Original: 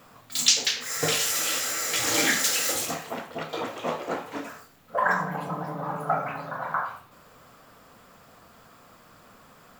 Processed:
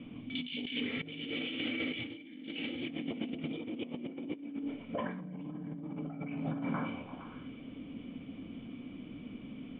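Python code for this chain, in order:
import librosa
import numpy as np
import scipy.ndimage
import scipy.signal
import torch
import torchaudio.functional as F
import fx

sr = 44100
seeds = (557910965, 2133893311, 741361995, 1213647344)

y = fx.formant_cascade(x, sr, vowel='i')
y = fx.echo_stepped(y, sr, ms=116, hz=250.0, octaves=0.7, feedback_pct=70, wet_db=-3.0)
y = fx.over_compress(y, sr, threshold_db=-51.0, ratio=-1.0)
y = y * 10.0 ** (11.0 / 20.0)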